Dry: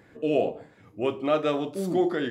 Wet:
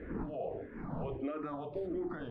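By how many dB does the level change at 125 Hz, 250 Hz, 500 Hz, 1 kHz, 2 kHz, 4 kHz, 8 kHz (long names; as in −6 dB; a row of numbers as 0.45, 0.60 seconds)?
−6.0 dB, −11.0 dB, −13.5 dB, −12.0 dB, −14.5 dB, below −20 dB, can't be measured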